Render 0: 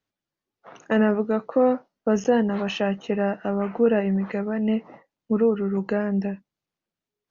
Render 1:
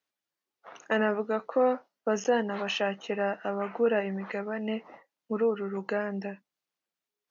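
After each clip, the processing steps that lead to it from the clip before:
high-pass filter 710 Hz 6 dB per octave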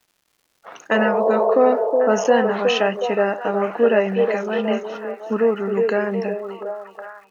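healed spectral selection 0:00.97–0:01.52, 350–1,100 Hz before
surface crackle 260 per second −57 dBFS
echo through a band-pass that steps 366 ms, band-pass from 420 Hz, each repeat 0.7 octaves, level −2 dB
level +8.5 dB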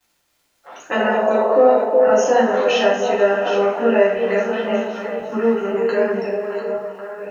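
delay that plays each chunk backwards 520 ms, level −9 dB
convolution reverb, pre-delay 3 ms, DRR −6.5 dB
level −6 dB

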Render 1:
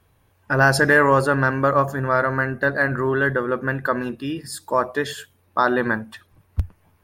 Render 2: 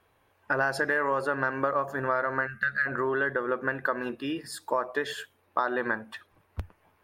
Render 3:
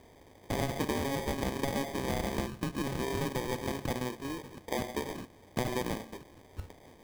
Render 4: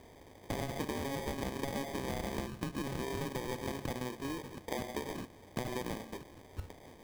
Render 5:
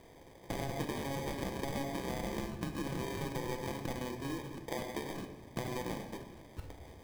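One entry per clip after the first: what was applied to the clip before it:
bass and treble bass −13 dB, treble −8 dB; gain on a spectral selection 0:02.47–0:02.86, 230–1,200 Hz −24 dB; downward compressor 5 to 1, threshold −24 dBFS, peak gain reduction 12 dB
compressor on every frequency bin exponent 0.6; low-pass that shuts in the quiet parts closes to 1,300 Hz, open at −20 dBFS; decimation without filtering 32×; level −8.5 dB
downward compressor 3 to 1, threshold −36 dBFS, peak gain reduction 8 dB; level +1 dB
rectangular room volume 760 cubic metres, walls mixed, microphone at 0.74 metres; level −1.5 dB

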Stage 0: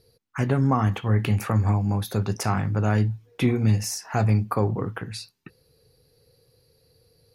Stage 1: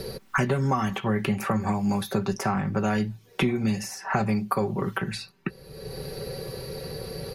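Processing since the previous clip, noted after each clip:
low-shelf EQ 140 Hz −4 dB
comb filter 5.2 ms, depth 65%
multiband upward and downward compressor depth 100%
level −1 dB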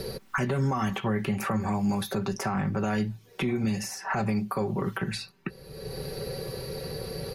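brickwall limiter −19 dBFS, peak gain reduction 8.5 dB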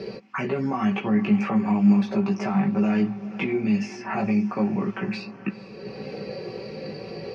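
multi-voice chorus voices 6, 0.34 Hz, delay 17 ms, depth 2.7 ms
loudspeaker in its box 170–4,900 Hz, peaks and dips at 200 Hz +9 dB, 310 Hz +4 dB, 690 Hz +3 dB, 1,500 Hz −4 dB, 2,500 Hz +8 dB, 3,700 Hz −10 dB
feedback delay with all-pass diffusion 478 ms, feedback 48%, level −15 dB
level +3.5 dB

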